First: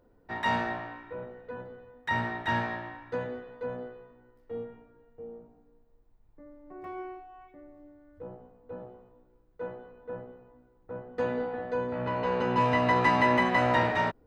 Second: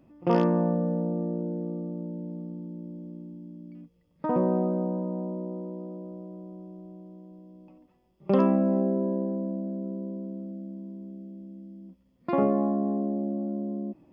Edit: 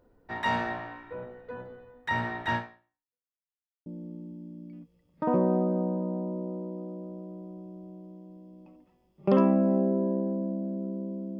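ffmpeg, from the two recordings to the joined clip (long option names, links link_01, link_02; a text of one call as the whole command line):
ffmpeg -i cue0.wav -i cue1.wav -filter_complex "[0:a]apad=whole_dur=11.39,atrim=end=11.39,asplit=2[link_01][link_02];[link_01]atrim=end=3.4,asetpts=PTS-STARTPTS,afade=type=out:start_time=2.55:duration=0.85:curve=exp[link_03];[link_02]atrim=start=3.4:end=3.86,asetpts=PTS-STARTPTS,volume=0[link_04];[1:a]atrim=start=2.88:end=10.41,asetpts=PTS-STARTPTS,afade=type=in:duration=0.004:curve=hsin[link_05];[link_03][link_04][link_05]concat=n=3:v=0:a=1" out.wav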